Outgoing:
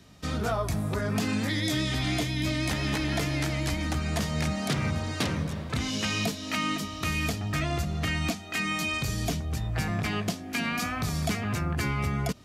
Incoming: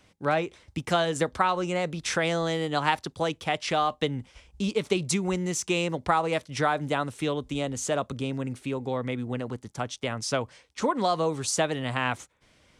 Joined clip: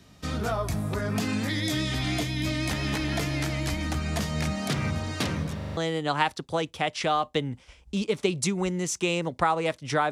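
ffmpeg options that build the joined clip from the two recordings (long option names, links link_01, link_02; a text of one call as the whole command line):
ffmpeg -i cue0.wav -i cue1.wav -filter_complex "[0:a]apad=whole_dur=10.11,atrim=end=10.11,asplit=5[link_01][link_02][link_03][link_04][link_05];[link_01]atrim=end=5.612[link_06];[link_02]atrim=start=5.568:end=5.612[link_07];[link_03]atrim=start=5.568:end=5.612[link_08];[link_04]atrim=start=5.568:end=5.612[link_09];[link_05]atrim=start=5.568:end=5.612[link_10];[1:a]atrim=start=2.438:end=6.78[link_11];[link_06][link_07]acrossfade=duration=0.004:curve1=hsin:curve2=hsin[link_12];[link_12][link_08]acrossfade=duration=0.004:curve1=hsin:curve2=hsin[link_13];[link_13][link_09]acrossfade=duration=0.004:curve1=hsin:curve2=hsin[link_14];[link_14][link_10]acrossfade=duration=0.004:curve1=hsin:curve2=hsin[link_15];[link_15][link_11]acrossfade=duration=0.004:curve1=hsin:curve2=hsin" out.wav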